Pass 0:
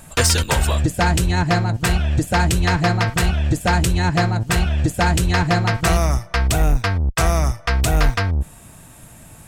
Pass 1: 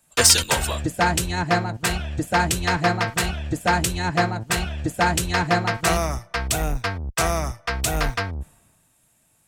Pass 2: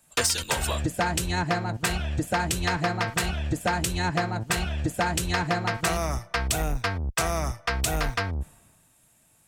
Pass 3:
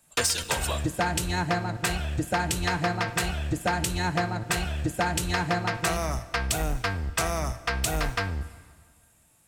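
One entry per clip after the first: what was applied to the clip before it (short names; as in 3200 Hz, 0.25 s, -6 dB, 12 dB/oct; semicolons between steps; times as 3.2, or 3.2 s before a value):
low shelf 130 Hz -11 dB; three-band expander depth 70%; gain -1.5 dB
compressor 6:1, threshold -23 dBFS, peak gain reduction 12.5 dB; gain +1 dB
plate-style reverb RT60 1.8 s, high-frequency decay 0.85×, DRR 14 dB; gain -1 dB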